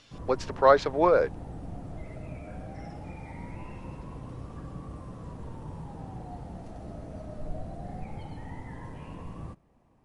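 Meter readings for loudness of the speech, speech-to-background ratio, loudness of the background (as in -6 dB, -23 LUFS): -24.0 LUFS, 18.0 dB, -42.0 LUFS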